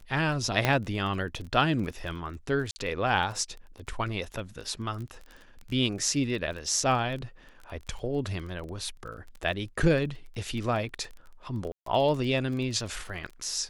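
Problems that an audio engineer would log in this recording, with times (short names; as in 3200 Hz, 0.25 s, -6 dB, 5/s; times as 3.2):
crackle 18/s -35 dBFS
0.65 pop -9 dBFS
2.71–2.76 gap 50 ms
11.72–11.86 gap 0.143 s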